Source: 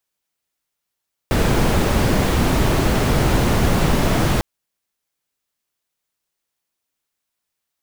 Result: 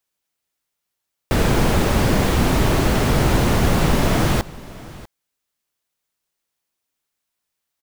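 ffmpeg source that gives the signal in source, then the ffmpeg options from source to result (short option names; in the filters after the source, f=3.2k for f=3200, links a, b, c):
-f lavfi -i "anoisesrc=c=brown:a=0.741:d=3.1:r=44100:seed=1"
-af "aecho=1:1:644:0.106"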